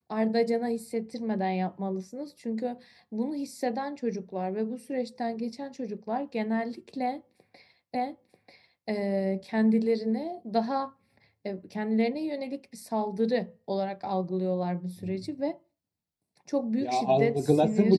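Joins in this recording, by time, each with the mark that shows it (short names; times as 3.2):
7.95 repeat of the last 0.94 s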